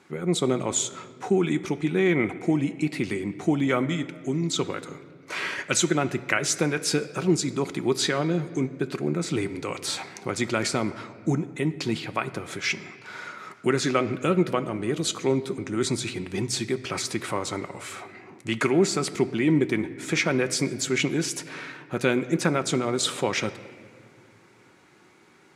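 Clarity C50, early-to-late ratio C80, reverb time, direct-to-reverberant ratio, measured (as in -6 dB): 14.5 dB, 15.5 dB, 2.1 s, 10.0 dB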